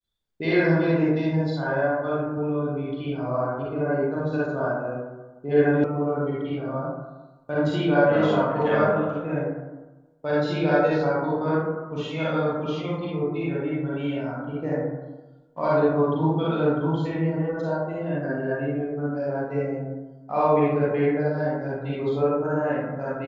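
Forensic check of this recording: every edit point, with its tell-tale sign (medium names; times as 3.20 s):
5.84 s: sound stops dead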